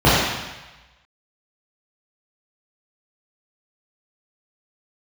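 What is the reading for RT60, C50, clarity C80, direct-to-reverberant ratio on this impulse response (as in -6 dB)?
1.1 s, -2.5 dB, 0.5 dB, -11.0 dB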